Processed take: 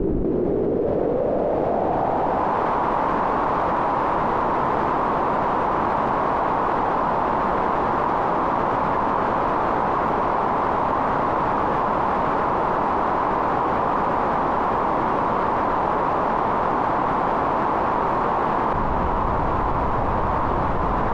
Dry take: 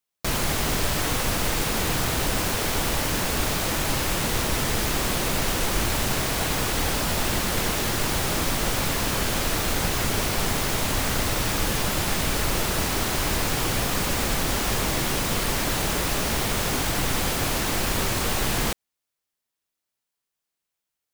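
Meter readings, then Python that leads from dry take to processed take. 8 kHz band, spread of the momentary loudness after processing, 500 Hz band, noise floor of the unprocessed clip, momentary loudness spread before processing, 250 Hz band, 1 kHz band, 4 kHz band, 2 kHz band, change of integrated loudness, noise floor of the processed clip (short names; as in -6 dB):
under -30 dB, 1 LU, +8.0 dB, -84 dBFS, 0 LU, +4.0 dB, +12.0 dB, -17.5 dB, -2.5 dB, +2.5 dB, -22 dBFS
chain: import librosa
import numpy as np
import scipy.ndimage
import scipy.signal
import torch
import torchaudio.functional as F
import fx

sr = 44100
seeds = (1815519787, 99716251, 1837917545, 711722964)

y = scipy.signal.sosfilt(scipy.signal.butter(2, 220.0, 'highpass', fs=sr, output='sos'), x)
y = fx.dmg_noise_colour(y, sr, seeds[0], colour='pink', level_db=-38.0)
y = fx.filter_sweep_lowpass(y, sr, from_hz=370.0, to_hz=1000.0, start_s=0.3, end_s=2.66, q=3.3)
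y = fx.env_flatten(y, sr, amount_pct=100)
y = y * 10.0 ** (1.5 / 20.0)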